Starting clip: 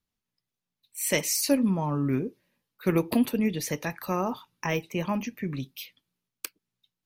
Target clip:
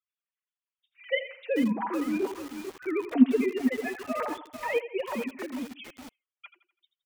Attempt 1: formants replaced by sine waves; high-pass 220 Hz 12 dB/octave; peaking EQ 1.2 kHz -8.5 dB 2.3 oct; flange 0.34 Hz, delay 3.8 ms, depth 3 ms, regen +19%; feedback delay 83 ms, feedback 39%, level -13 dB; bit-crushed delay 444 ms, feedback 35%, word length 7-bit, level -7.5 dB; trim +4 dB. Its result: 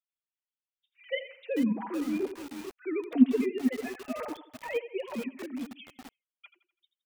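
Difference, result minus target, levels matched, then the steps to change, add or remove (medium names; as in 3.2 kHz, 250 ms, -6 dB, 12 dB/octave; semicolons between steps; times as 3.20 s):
1 kHz band -5.0 dB
remove: peaking EQ 1.2 kHz -8.5 dB 2.3 oct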